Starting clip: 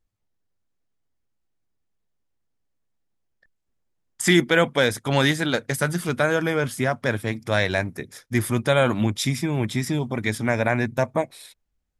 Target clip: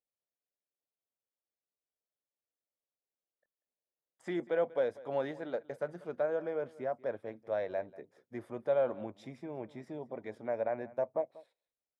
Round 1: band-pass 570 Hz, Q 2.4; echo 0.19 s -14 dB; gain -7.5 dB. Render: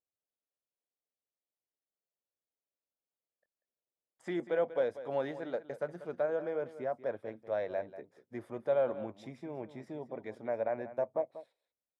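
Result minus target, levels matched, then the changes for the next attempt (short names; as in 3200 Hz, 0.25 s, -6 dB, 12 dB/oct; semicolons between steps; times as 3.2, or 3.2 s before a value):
echo-to-direct +6 dB
change: echo 0.19 s -20 dB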